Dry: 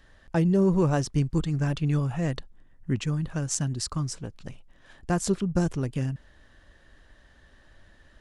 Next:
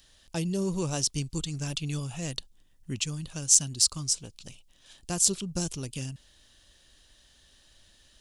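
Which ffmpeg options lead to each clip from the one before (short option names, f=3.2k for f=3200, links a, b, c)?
-af "aexciter=amount=6.7:drive=4.9:freq=2.6k,volume=-8dB"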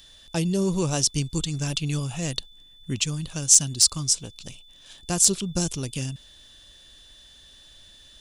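-af "asoftclip=type=tanh:threshold=-6.5dB,aeval=exprs='val(0)+0.00158*sin(2*PI*3500*n/s)':c=same,volume=5.5dB"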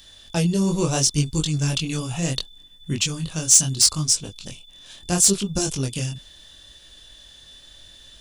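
-af "acontrast=73,flanger=delay=19.5:depth=5.4:speed=0.73"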